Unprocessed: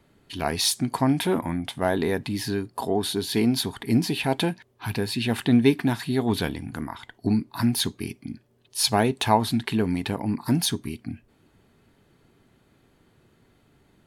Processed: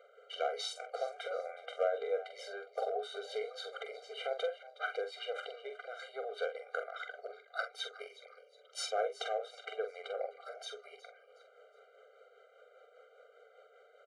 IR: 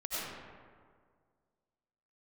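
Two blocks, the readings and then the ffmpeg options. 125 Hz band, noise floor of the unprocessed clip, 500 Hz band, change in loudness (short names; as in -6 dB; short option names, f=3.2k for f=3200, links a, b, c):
under -40 dB, -63 dBFS, -8.5 dB, -15.0 dB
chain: -filter_complex "[0:a]highshelf=f=2.5k:g=-11.5,acompressor=threshold=-34dB:ratio=10,volume=26.5dB,asoftclip=hard,volume=-26.5dB,tremolo=f=5:d=0.45,highpass=f=430:w=0.5412,highpass=f=430:w=1.3066,equalizer=f=510:t=q:w=4:g=9,equalizer=f=1.4k:t=q:w=4:g=5,equalizer=f=4.9k:t=q:w=4:g=-8,lowpass=f=7.3k:w=0.5412,lowpass=f=7.3k:w=1.3066,asplit=2[a][b];[b]adelay=45,volume=-7.5dB[c];[a][c]amix=inputs=2:normalize=0,asplit=4[d][e][f][g];[e]adelay=366,afreqshift=110,volume=-17.5dB[h];[f]adelay=732,afreqshift=220,volume=-26.4dB[i];[g]adelay=1098,afreqshift=330,volume=-35.2dB[j];[d][h][i][j]amix=inputs=4:normalize=0,afftfilt=real='re*eq(mod(floor(b*sr/1024/400),2),1)':imag='im*eq(mod(floor(b*sr/1024/400),2),1)':win_size=1024:overlap=0.75,volume=7.5dB"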